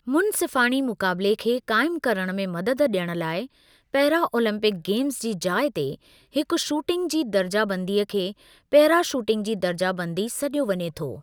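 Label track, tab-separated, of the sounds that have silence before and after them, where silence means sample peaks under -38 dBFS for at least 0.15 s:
3.940000	5.950000	sound
6.350000	8.320000	sound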